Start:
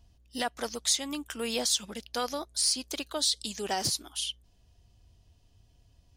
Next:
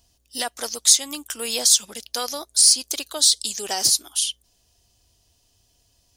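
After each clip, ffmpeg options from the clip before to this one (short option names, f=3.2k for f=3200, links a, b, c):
-af "bass=f=250:g=-9,treble=f=4k:g=12,volume=2.5dB"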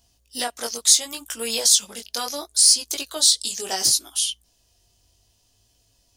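-af "flanger=delay=17.5:depth=4:speed=0.7,volume=3dB"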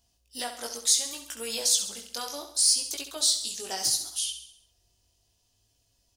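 -af "aecho=1:1:67|134|201|268|335|402:0.335|0.171|0.0871|0.0444|0.0227|0.0116,volume=-7.5dB"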